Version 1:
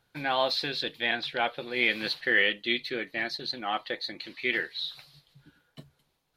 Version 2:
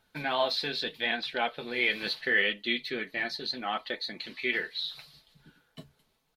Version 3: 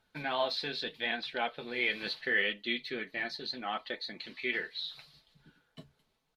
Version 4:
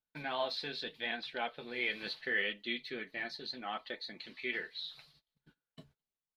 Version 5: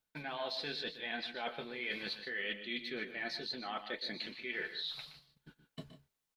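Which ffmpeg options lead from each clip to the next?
ffmpeg -i in.wav -filter_complex "[0:a]aecho=1:1:4.6:0.35,asplit=2[link_01][link_02];[link_02]acompressor=threshold=-35dB:ratio=6,volume=-1.5dB[link_03];[link_01][link_03]amix=inputs=2:normalize=0,flanger=delay=3.2:depth=8.3:regen=-50:speed=0.76:shape=sinusoidal" out.wav
ffmpeg -i in.wav -af "highshelf=frequency=11000:gain=-11.5,volume=-3.5dB" out.wav
ffmpeg -i in.wav -af "agate=range=-21dB:threshold=-59dB:ratio=16:detection=peak,volume=-4dB" out.wav
ffmpeg -i in.wav -af "areverse,acompressor=threshold=-45dB:ratio=6,areverse,aecho=1:1:121|150:0.237|0.211,volume=7.5dB" out.wav

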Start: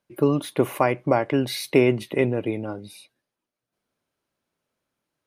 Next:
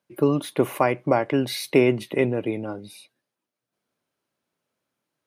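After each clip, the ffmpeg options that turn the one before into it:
ffmpeg -i in.wav -af "highpass=100" out.wav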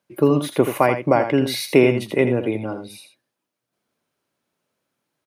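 ffmpeg -i in.wav -af "aecho=1:1:82:0.355,volume=3.5dB" out.wav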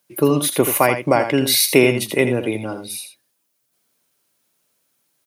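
ffmpeg -i in.wav -af "crystalizer=i=4:c=0" out.wav

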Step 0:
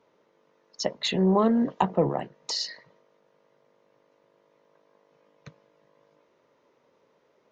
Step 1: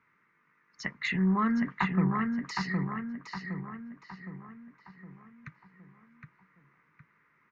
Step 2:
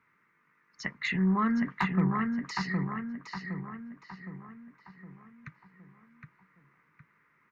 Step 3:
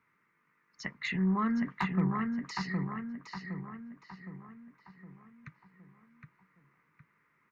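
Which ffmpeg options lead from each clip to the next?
ffmpeg -i in.wav -filter_complex "[0:a]firequalizer=gain_entry='entry(150,0);entry(560,-25);entry(1200,4);entry(2100,9);entry(3200,-13)':delay=0.05:min_phase=1,asplit=2[link_01][link_02];[link_02]adelay=764,lowpass=frequency=2700:poles=1,volume=-3.5dB,asplit=2[link_03][link_04];[link_04]adelay=764,lowpass=frequency=2700:poles=1,volume=0.49,asplit=2[link_05][link_06];[link_06]adelay=764,lowpass=frequency=2700:poles=1,volume=0.49,asplit=2[link_07][link_08];[link_08]adelay=764,lowpass=frequency=2700:poles=1,volume=0.49,asplit=2[link_09][link_10];[link_10]adelay=764,lowpass=frequency=2700:poles=1,volume=0.49,asplit=2[link_11][link_12];[link_12]adelay=764,lowpass=frequency=2700:poles=1,volume=0.49[link_13];[link_03][link_05][link_07][link_09][link_11][link_13]amix=inputs=6:normalize=0[link_14];[link_01][link_14]amix=inputs=2:normalize=0" out.wav
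ffmpeg -i in.wav -af "asoftclip=type=hard:threshold=-17dB" out.wav
ffmpeg -i in.wav -af "equalizer=frequency=1600:width=1.9:gain=-2.5,volume=-2.5dB" out.wav

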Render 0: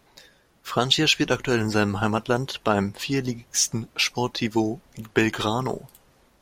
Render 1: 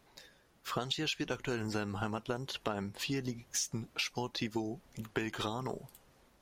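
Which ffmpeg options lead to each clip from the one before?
ffmpeg -i in.wav -af "acompressor=threshold=-26dB:ratio=6,volume=-6dB" out.wav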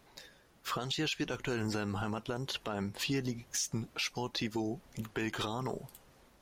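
ffmpeg -i in.wav -af "alimiter=level_in=3.5dB:limit=-24dB:level=0:latency=1:release=11,volume=-3.5dB,volume=3dB" out.wav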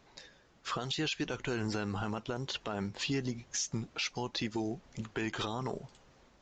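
ffmpeg -i in.wav -af "acrusher=bits=7:mode=log:mix=0:aa=0.000001,aresample=16000,aresample=44100" out.wav

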